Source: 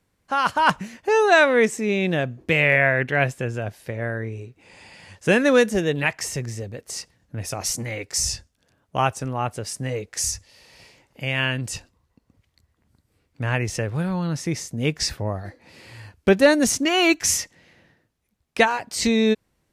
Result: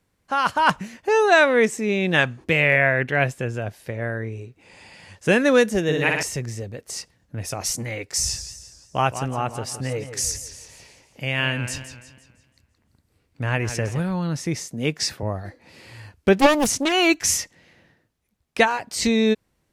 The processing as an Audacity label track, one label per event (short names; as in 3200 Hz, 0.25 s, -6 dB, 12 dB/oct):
2.140000	2.440000	spectral gain 770–11000 Hz +11 dB
5.830000	6.230000	flutter echo walls apart 10 m, dies away in 1.1 s
8.050000	14.000000	warbling echo 0.169 s, feedback 44%, depth 119 cents, level -11 dB
14.600000	15.230000	HPF 140 Hz
16.370000	16.920000	Doppler distortion depth 0.71 ms